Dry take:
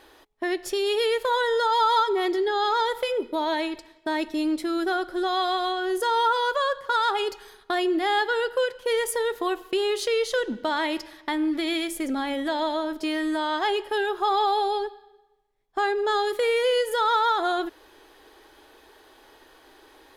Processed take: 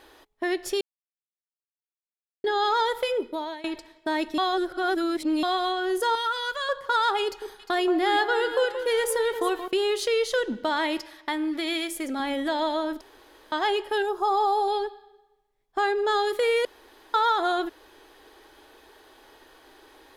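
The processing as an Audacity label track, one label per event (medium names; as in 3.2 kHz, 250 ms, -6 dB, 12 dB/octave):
0.810000	2.440000	mute
3.160000	3.640000	fade out, to -20.5 dB
4.380000	5.430000	reverse
6.150000	6.690000	high-order bell 570 Hz -10 dB 2.3 oct
7.240000	9.680000	echo whose repeats swap between lows and highs 177 ms, split 1.4 kHz, feedback 59%, level -7.5 dB
11.000000	12.200000	bass shelf 270 Hz -7.5 dB
13.010000	13.520000	room tone
14.020000	14.680000	high-order bell 2.4 kHz -10 dB
16.650000	17.140000	room tone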